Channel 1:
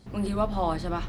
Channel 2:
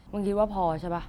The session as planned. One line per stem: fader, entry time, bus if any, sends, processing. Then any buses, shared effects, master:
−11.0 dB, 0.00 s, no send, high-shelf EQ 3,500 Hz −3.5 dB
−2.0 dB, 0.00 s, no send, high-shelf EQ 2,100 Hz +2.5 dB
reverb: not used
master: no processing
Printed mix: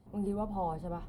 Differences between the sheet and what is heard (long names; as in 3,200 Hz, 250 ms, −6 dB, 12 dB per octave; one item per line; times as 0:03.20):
stem 2 −2.0 dB → −9.5 dB
master: extra flat-topped bell 3,100 Hz −12 dB 2.7 octaves